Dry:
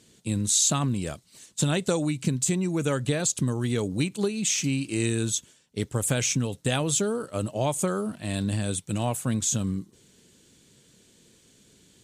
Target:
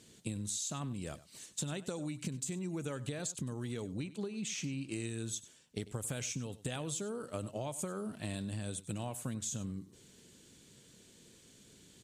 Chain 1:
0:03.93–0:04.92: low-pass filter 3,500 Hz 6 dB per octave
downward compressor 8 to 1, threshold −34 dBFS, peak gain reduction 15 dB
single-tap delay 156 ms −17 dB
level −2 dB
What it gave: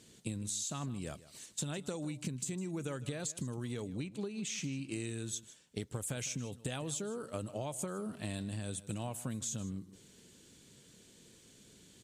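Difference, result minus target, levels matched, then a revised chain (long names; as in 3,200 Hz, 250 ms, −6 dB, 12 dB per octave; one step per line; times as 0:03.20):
echo 59 ms late
0:03.93–0:04.92: low-pass filter 3,500 Hz 6 dB per octave
downward compressor 8 to 1, threshold −34 dBFS, peak gain reduction 15 dB
single-tap delay 97 ms −17 dB
level −2 dB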